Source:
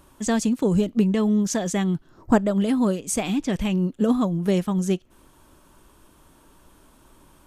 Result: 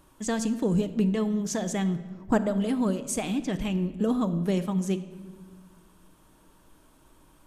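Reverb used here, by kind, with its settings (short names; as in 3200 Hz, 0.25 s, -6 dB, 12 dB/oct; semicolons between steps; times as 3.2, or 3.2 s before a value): shoebox room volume 1500 m³, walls mixed, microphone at 0.55 m; gain -5 dB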